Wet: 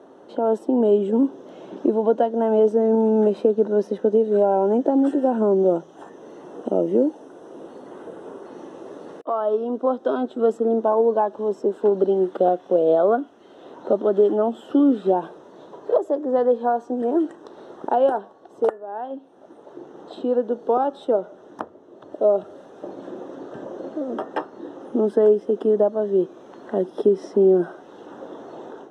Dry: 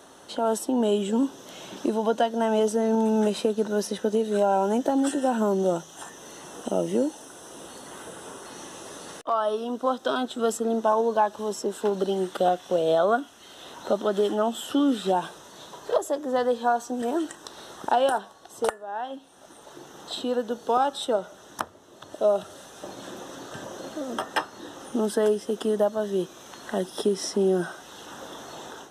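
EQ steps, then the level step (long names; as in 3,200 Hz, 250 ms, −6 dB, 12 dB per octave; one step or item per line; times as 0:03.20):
resonant band-pass 380 Hz, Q 1.2
+7.5 dB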